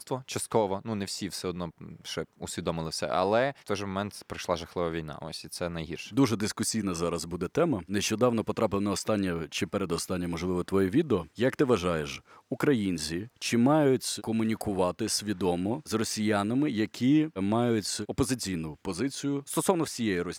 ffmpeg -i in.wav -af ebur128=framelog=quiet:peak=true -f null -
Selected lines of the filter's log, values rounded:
Integrated loudness:
  I:         -29.2 LUFS
  Threshold: -39.3 LUFS
Loudness range:
  LRA:         3.9 LU
  Threshold: -49.1 LUFS
  LRA low:   -31.6 LUFS
  LRA high:  -27.7 LUFS
True peak:
  Peak:       -9.6 dBFS